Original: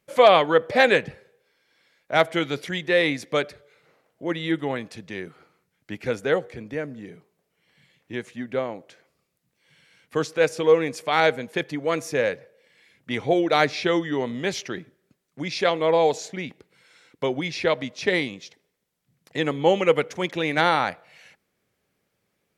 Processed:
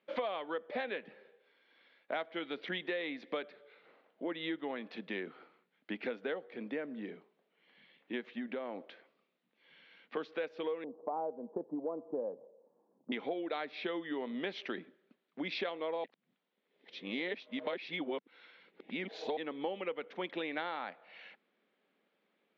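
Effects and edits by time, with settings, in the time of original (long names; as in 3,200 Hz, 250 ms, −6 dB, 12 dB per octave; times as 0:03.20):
0:08.20–0:10.17: downward compressor 4 to 1, threshold −32 dBFS
0:10.84–0:13.12: Butterworth low-pass 1,000 Hz 48 dB per octave
0:16.04–0:19.37: reverse
whole clip: elliptic band-pass filter 220–3,600 Hz, stop band 40 dB; downward compressor 10 to 1, threshold −33 dBFS; level −1.5 dB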